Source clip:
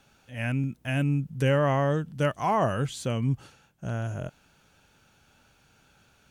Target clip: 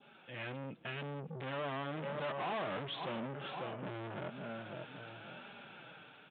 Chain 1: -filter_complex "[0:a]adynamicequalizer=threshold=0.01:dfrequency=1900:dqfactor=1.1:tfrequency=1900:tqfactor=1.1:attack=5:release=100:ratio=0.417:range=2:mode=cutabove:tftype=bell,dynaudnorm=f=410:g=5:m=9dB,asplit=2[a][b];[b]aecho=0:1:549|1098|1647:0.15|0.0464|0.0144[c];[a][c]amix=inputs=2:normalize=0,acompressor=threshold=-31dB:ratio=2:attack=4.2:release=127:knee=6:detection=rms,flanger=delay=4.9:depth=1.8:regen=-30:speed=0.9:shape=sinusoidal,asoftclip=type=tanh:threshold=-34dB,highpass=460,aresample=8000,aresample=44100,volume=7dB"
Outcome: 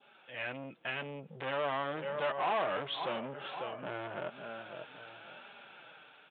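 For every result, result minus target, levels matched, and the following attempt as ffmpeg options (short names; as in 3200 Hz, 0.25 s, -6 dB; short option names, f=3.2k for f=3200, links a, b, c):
250 Hz band -6.5 dB; soft clip: distortion -4 dB
-filter_complex "[0:a]adynamicequalizer=threshold=0.01:dfrequency=1900:dqfactor=1.1:tfrequency=1900:tqfactor=1.1:attack=5:release=100:ratio=0.417:range=2:mode=cutabove:tftype=bell,dynaudnorm=f=410:g=5:m=9dB,asplit=2[a][b];[b]aecho=0:1:549|1098|1647:0.15|0.0464|0.0144[c];[a][c]amix=inputs=2:normalize=0,acompressor=threshold=-31dB:ratio=2:attack=4.2:release=127:knee=6:detection=rms,flanger=delay=4.9:depth=1.8:regen=-30:speed=0.9:shape=sinusoidal,asoftclip=type=tanh:threshold=-34dB,highpass=230,aresample=8000,aresample=44100,volume=7dB"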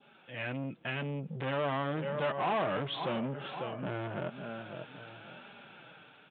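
soft clip: distortion -4 dB
-filter_complex "[0:a]adynamicequalizer=threshold=0.01:dfrequency=1900:dqfactor=1.1:tfrequency=1900:tqfactor=1.1:attack=5:release=100:ratio=0.417:range=2:mode=cutabove:tftype=bell,dynaudnorm=f=410:g=5:m=9dB,asplit=2[a][b];[b]aecho=0:1:549|1098|1647:0.15|0.0464|0.0144[c];[a][c]amix=inputs=2:normalize=0,acompressor=threshold=-31dB:ratio=2:attack=4.2:release=127:knee=6:detection=rms,flanger=delay=4.9:depth=1.8:regen=-30:speed=0.9:shape=sinusoidal,asoftclip=type=tanh:threshold=-42.5dB,highpass=230,aresample=8000,aresample=44100,volume=7dB"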